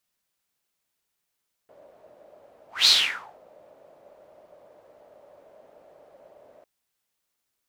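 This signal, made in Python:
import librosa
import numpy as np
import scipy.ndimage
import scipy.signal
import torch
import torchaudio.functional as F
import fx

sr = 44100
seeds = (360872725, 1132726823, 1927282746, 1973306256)

y = fx.whoosh(sr, seeds[0], length_s=4.95, peak_s=1.18, rise_s=0.19, fall_s=0.55, ends_hz=590.0, peak_hz=4200.0, q=6.8, swell_db=37)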